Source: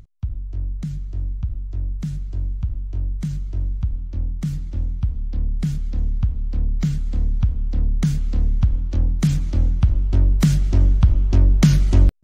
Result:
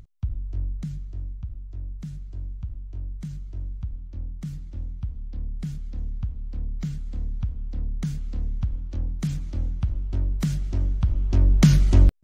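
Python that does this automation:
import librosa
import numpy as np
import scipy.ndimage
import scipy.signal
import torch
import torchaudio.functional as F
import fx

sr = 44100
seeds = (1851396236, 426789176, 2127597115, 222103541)

y = fx.gain(x, sr, db=fx.line((0.56, -2.0), (1.4, -9.0), (10.97, -9.0), (11.63, -1.5)))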